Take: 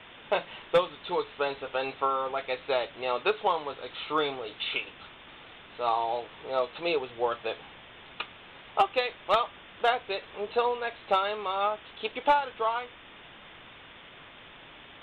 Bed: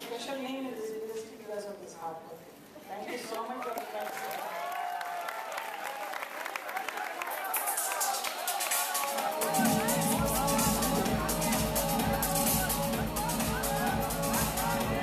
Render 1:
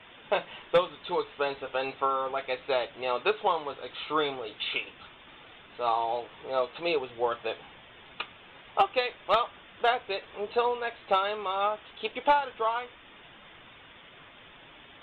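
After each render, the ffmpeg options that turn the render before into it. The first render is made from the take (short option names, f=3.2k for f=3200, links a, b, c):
-af "afftdn=nr=6:nf=-50"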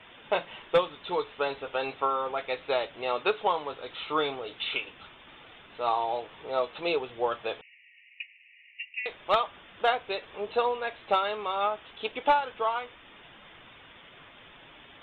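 -filter_complex "[0:a]asettb=1/sr,asplit=3[a][b][c];[a]atrim=end=7.614[d];[b]atrim=start=7.61:end=9.06,asetpts=PTS-STARTPTS,afade=t=in:d=0.004:c=qsin,afade=t=out:st=1.446:d=0.004:c=qsin,asuperpass=centerf=2300:order=20:qfactor=2.2[e];[c]atrim=start=9.056[f];[d][e]acrossfade=d=0.004:c1=hsin:c2=qsin[g];[g][f]acrossfade=d=0.004:c1=qsin:c2=hsin"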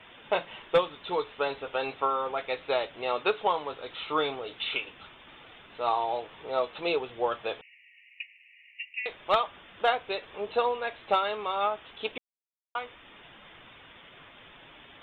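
-filter_complex "[0:a]asplit=3[a][b][c];[a]atrim=end=12.18,asetpts=PTS-STARTPTS,afade=t=out:st=12.176:d=0.004:c=hsin[d];[b]atrim=start=12.18:end=12.75,asetpts=PTS-STARTPTS,volume=0[e];[c]atrim=start=12.75,asetpts=PTS-STARTPTS,afade=t=in:d=0.004:c=hsin[f];[d][e][f]concat=n=3:v=0:a=1"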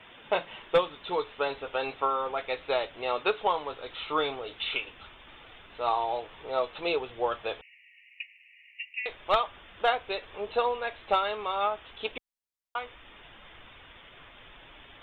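-af "asubboost=boost=3.5:cutoff=76"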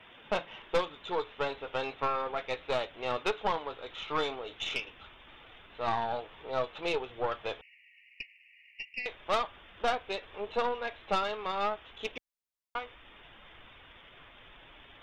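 -af "aeval=exprs='(tanh(12.6*val(0)+0.6)-tanh(0.6))/12.6':c=same"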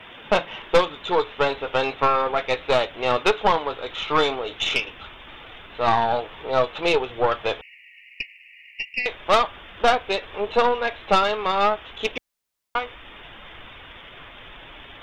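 -af "volume=11.5dB"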